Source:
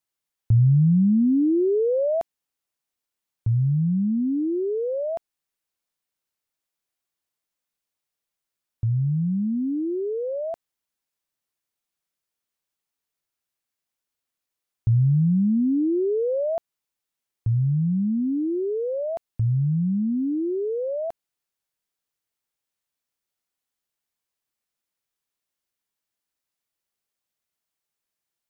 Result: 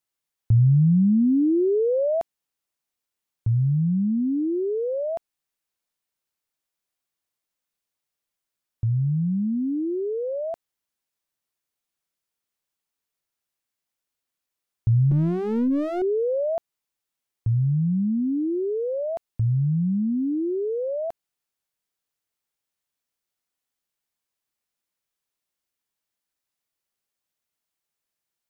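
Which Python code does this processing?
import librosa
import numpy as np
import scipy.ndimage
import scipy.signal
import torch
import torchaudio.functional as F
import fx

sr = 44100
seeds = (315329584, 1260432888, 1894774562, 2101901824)

y = fx.lower_of_two(x, sr, delay_ms=7.6, at=(15.11, 16.02))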